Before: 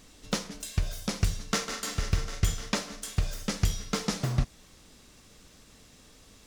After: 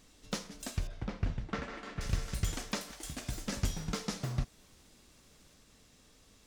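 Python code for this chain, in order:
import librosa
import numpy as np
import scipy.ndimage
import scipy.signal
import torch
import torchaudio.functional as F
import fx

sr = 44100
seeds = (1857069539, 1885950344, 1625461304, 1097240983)

y = fx.highpass(x, sr, hz=600.0, slope=12, at=(2.91, 3.32))
y = fx.echo_pitch(y, sr, ms=404, semitones=4, count=2, db_per_echo=-6.0)
y = fx.lowpass(y, sr, hz=2200.0, slope=12, at=(0.87, 2.01))
y = y * librosa.db_to_amplitude(-7.0)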